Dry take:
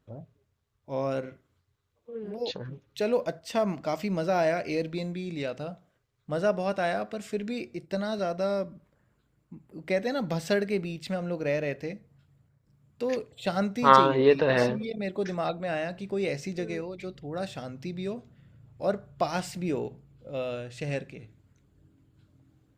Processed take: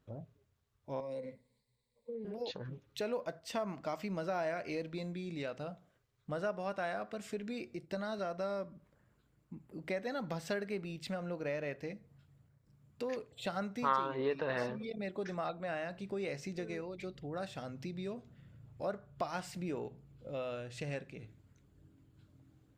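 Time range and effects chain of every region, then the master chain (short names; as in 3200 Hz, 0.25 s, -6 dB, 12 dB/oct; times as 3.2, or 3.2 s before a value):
1–2.25 ripple EQ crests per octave 0.96, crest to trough 14 dB + compressor 4:1, threshold -31 dBFS + fixed phaser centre 340 Hz, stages 6
whole clip: dynamic EQ 1200 Hz, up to +6 dB, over -42 dBFS, Q 1; compressor 2:1, threshold -40 dBFS; gain -2 dB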